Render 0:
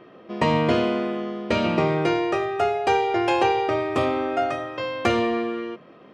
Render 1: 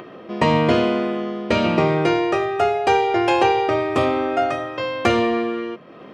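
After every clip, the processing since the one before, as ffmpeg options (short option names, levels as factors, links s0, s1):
-af "acompressor=mode=upward:threshold=0.0158:ratio=2.5,volume=1.5"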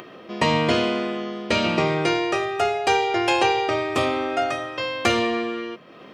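-af "highshelf=f=2300:g=11,volume=0.596"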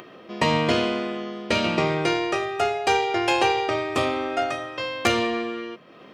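-af "aeval=exprs='0.562*(cos(1*acos(clip(val(0)/0.562,-1,1)))-cos(1*PI/2))+0.141*(cos(3*acos(clip(val(0)/0.562,-1,1)))-cos(3*PI/2))+0.1*(cos(5*acos(clip(val(0)/0.562,-1,1)))-cos(5*PI/2))+0.0447*(cos(7*acos(clip(val(0)/0.562,-1,1)))-cos(7*PI/2))':c=same,volume=1.26"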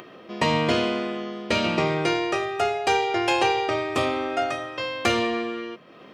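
-af "asoftclip=type=tanh:threshold=0.355"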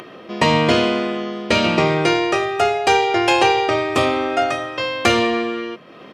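-af "aresample=32000,aresample=44100,volume=2.11"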